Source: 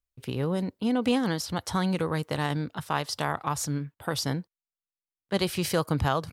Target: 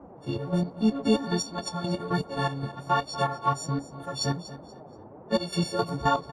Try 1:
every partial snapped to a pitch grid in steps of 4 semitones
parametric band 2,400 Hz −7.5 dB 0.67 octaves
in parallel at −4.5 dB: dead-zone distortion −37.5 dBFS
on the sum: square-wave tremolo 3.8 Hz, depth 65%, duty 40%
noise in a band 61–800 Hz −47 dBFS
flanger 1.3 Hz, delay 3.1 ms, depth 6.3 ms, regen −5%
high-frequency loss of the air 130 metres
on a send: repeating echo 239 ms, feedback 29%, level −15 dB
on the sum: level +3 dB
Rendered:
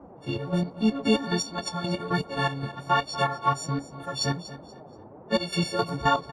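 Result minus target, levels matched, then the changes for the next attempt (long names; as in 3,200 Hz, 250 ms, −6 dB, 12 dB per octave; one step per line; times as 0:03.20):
2,000 Hz band +3.5 dB
change: parametric band 2,400 Hz −19 dB 0.67 octaves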